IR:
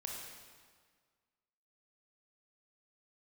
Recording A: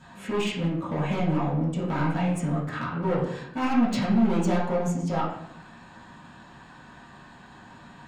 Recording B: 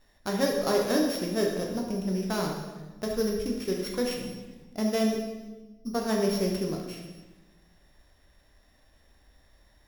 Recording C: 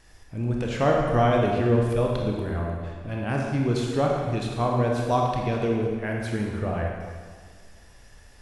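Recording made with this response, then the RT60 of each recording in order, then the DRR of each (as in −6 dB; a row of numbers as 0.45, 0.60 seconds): C; 0.75, 1.2, 1.7 seconds; −10.5, −0.5, −1.0 decibels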